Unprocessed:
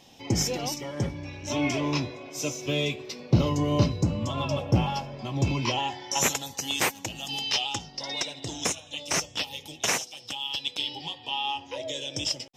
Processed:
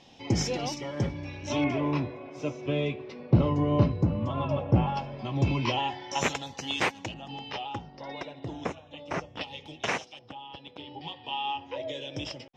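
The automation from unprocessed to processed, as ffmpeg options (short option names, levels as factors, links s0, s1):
-af "asetnsamples=n=441:p=0,asendcmd='1.64 lowpass f 1900;4.97 lowpass f 3500;7.14 lowpass f 1500;9.41 lowpass f 2700;10.19 lowpass f 1200;11.01 lowpass f 2500',lowpass=4800"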